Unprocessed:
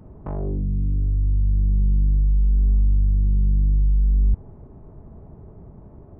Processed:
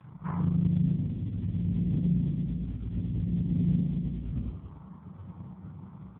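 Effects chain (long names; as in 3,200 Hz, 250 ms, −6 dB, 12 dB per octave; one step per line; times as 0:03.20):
brick-wall band-stop 170–750 Hz
high-pass filter 50 Hz 12 dB per octave
parametric band 460 Hz −11.5 dB 1 octave
mains-hum notches 50/100/150/200/250/300/350/400/450/500 Hz
pitch-shifted copies added −5 semitones −12 dB, +3 semitones −4 dB
high-frequency loss of the air 81 metres
double-tracking delay 33 ms −5 dB
on a send at −3 dB: convolution reverb RT60 0.80 s, pre-delay 3 ms
on the sum: level +3 dB
AMR narrowband 4.75 kbit/s 8,000 Hz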